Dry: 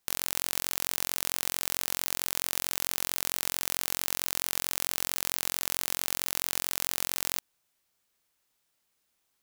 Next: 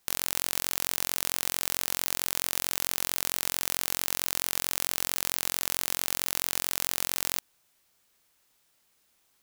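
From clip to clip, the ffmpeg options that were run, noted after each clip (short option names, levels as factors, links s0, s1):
-af "acontrast=87"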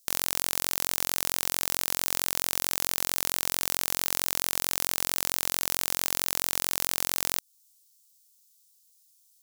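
-filter_complex "[0:a]acrossover=split=4500[s0][s1];[s0]acrusher=bits=4:dc=4:mix=0:aa=0.000001[s2];[s2][s1]amix=inputs=2:normalize=0,alimiter=limit=0.316:level=0:latency=1:release=243,volume=2.24"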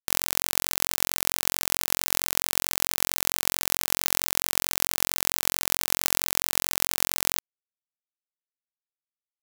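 -af "acrusher=bits=5:dc=4:mix=0:aa=0.000001,volume=1.33"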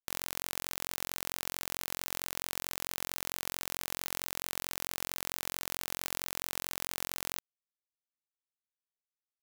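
-af "asoftclip=type=tanh:threshold=0.531,volume=0.376"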